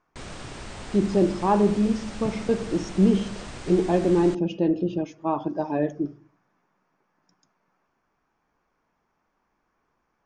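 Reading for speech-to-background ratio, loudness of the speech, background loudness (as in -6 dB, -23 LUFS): 15.5 dB, -24.0 LUFS, -39.5 LUFS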